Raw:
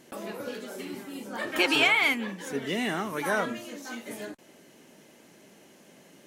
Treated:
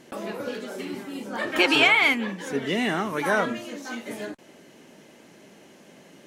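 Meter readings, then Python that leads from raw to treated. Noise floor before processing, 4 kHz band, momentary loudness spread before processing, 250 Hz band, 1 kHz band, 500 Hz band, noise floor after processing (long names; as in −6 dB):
−56 dBFS, +3.5 dB, 18 LU, +4.5 dB, +4.5 dB, +4.5 dB, −52 dBFS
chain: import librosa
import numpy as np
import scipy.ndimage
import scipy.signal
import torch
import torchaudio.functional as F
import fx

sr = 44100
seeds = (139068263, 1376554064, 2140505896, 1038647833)

y = fx.high_shelf(x, sr, hz=8800.0, db=-10.0)
y = y * 10.0 ** (4.5 / 20.0)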